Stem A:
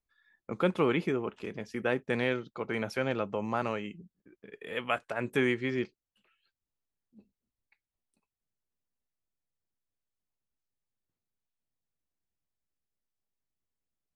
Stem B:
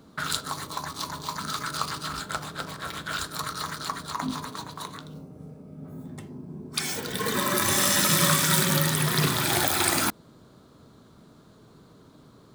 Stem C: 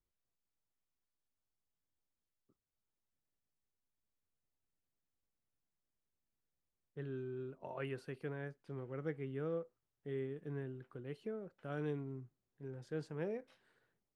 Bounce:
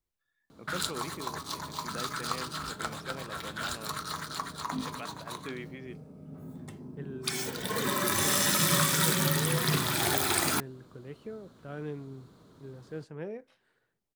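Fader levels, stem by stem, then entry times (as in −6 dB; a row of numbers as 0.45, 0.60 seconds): −13.0, −4.0, +1.5 decibels; 0.10, 0.50, 0.00 seconds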